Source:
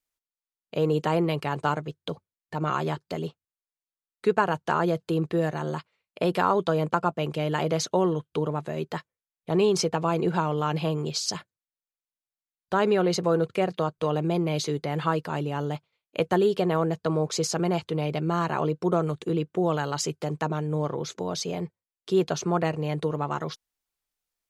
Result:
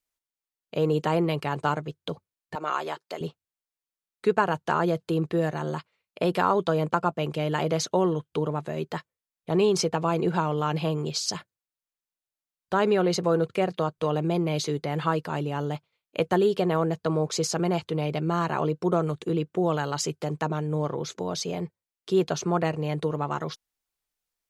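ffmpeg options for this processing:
-filter_complex "[0:a]asettb=1/sr,asplit=3[s0][s1][s2];[s0]atrim=end=2.554[s3];[s1]atrim=start=2.55:end=3.21,asetpts=PTS-STARTPTS,afade=t=in:d=0.004:c=qsin,afade=t=out:st=0.656:d=0.004:c=qsin,highpass=470[s4];[s2]atrim=start=3.206[s5];[s3][s4]acrossfade=d=0.004:c1=hsin:c2=qsin[s6];[s6][s5]acrossfade=d=0.004:c1=qsin:c2=hsin"

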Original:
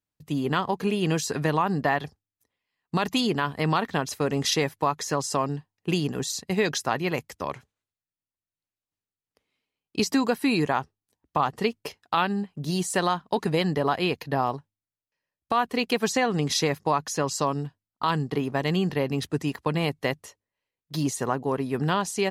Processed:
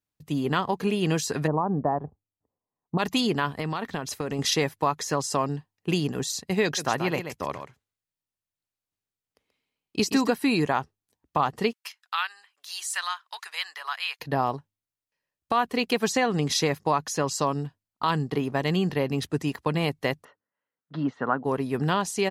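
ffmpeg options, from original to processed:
-filter_complex "[0:a]asplit=3[s0][s1][s2];[s0]afade=t=out:st=1.46:d=0.02[s3];[s1]lowpass=f=1000:w=0.5412,lowpass=f=1000:w=1.3066,afade=t=in:st=1.46:d=0.02,afade=t=out:st=2.98:d=0.02[s4];[s2]afade=t=in:st=2.98:d=0.02[s5];[s3][s4][s5]amix=inputs=3:normalize=0,asettb=1/sr,asplit=3[s6][s7][s8];[s6]atrim=end=3.594[s9];[s7]atrim=start=3.59:end=4.39,asetpts=PTS-STARTPTS,afade=t=in:d=0.004:c=qsin,afade=t=out:st=0.796:d=0.004:c=qsin,acompressor=threshold=0.0562:ratio=6:attack=3.2:release=140:knee=1:detection=peak[s10];[s8]atrim=start=4.386[s11];[s9][s10]acrossfade=d=0.004:c1=hsin:c2=qsin[s12];[s12][s11]acrossfade=d=0.004:c1=qsin:c2=hsin,asplit=3[s13][s14][s15];[s13]afade=t=out:st=6.77:d=0.02[s16];[s14]aecho=1:1:132:0.376,afade=t=in:st=6.77:d=0.02,afade=t=out:st=10.29:d=0.02[s17];[s15]afade=t=in:st=10.29:d=0.02[s18];[s16][s17][s18]amix=inputs=3:normalize=0,asettb=1/sr,asplit=3[s19][s20][s21];[s19]atrim=end=11.734[s22];[s20]atrim=start=11.73:end=14.2,asetpts=PTS-STARTPTS,afade=t=in:d=0.004:c=qsin,afade=t=out:st=2.466:d=0.004:c=qsin,highpass=f=1200:w=0.5412,highpass=f=1200:w=1.3066[s23];[s21]atrim=start=14.196[s24];[s22][s23]acrossfade=d=0.004:c1=hsin:c2=qsin[s25];[s25][s24]acrossfade=d=0.004:c1=qsin:c2=hsin,asplit=3[s26][s27][s28];[s26]afade=t=out:st=20.23:d=0.02[s29];[s27]highpass=170,equalizer=f=260:t=q:w=4:g=3,equalizer=f=370:t=q:w=4:g=-6,equalizer=f=1400:t=q:w=4:g=9,equalizer=f=2400:t=q:w=4:g=-10,lowpass=f=2700:w=0.5412,lowpass=f=2700:w=1.3066,afade=t=in:st=20.23:d=0.02,afade=t=out:st=21.44:d=0.02[s30];[s28]afade=t=in:st=21.44:d=0.02[s31];[s29][s30][s31]amix=inputs=3:normalize=0"

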